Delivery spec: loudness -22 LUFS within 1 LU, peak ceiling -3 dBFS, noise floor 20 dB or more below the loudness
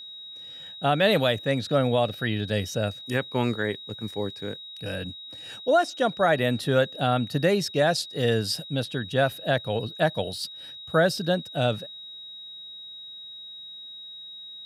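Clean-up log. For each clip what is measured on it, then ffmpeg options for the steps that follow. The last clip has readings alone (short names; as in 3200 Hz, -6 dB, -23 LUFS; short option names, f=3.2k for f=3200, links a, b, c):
steady tone 3800 Hz; tone level -39 dBFS; loudness -25.5 LUFS; peak -10.5 dBFS; loudness target -22.0 LUFS
-> -af "bandreject=f=3.8k:w=30"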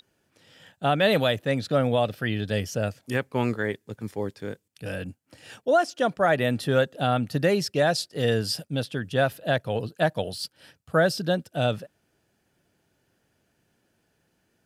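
steady tone none; loudness -26.0 LUFS; peak -10.5 dBFS; loudness target -22.0 LUFS
-> -af "volume=4dB"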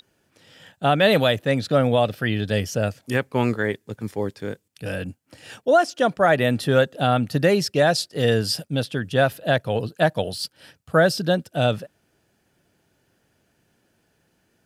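loudness -22.0 LUFS; peak -6.5 dBFS; noise floor -68 dBFS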